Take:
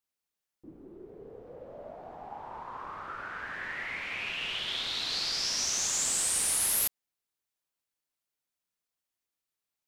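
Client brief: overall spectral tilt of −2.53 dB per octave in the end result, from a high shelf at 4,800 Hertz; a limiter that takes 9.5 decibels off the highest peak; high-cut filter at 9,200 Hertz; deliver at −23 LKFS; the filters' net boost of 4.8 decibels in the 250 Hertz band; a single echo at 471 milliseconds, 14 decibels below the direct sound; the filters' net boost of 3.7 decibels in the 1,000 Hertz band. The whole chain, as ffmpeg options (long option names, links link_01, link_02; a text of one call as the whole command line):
ffmpeg -i in.wav -af "lowpass=9200,equalizer=frequency=250:width_type=o:gain=6,equalizer=frequency=1000:width_type=o:gain=4.5,highshelf=frequency=4800:gain=-3.5,alimiter=level_in=6dB:limit=-24dB:level=0:latency=1,volume=-6dB,aecho=1:1:471:0.2,volume=15dB" out.wav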